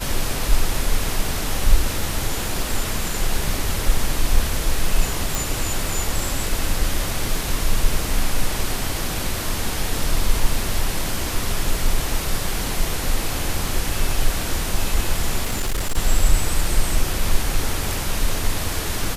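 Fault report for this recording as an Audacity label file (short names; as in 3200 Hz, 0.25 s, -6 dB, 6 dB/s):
5.350000	5.350000	pop
15.430000	15.980000	clipped -17.5 dBFS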